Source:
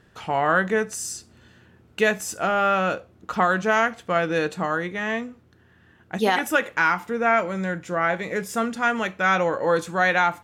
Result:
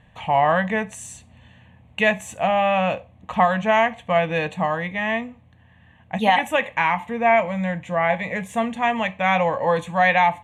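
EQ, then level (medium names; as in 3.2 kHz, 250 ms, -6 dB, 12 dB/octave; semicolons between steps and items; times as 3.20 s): distance through air 67 m; static phaser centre 1.4 kHz, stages 6; +6.5 dB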